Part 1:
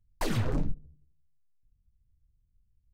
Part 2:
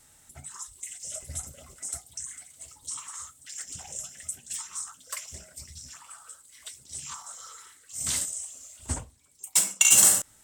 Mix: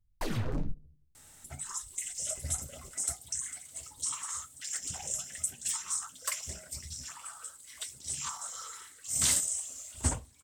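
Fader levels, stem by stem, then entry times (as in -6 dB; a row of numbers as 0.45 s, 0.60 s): -4.0 dB, +2.0 dB; 0.00 s, 1.15 s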